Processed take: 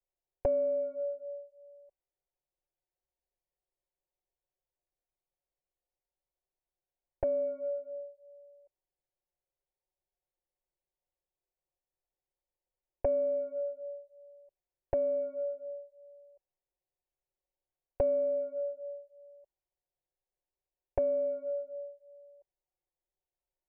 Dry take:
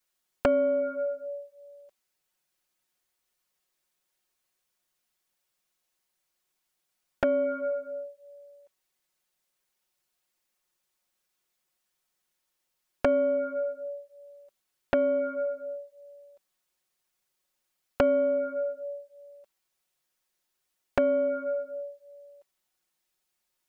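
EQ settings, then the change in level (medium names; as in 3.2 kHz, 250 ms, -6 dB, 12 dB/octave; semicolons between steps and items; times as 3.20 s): Gaussian low-pass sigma 5.4 samples; bass shelf 110 Hz +8 dB; static phaser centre 550 Hz, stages 4; -4.0 dB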